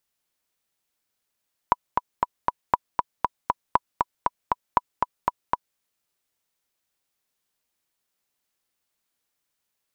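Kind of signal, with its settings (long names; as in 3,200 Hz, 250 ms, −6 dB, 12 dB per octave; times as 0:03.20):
click track 236 BPM, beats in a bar 4, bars 4, 983 Hz, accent 3.5 dB −3.5 dBFS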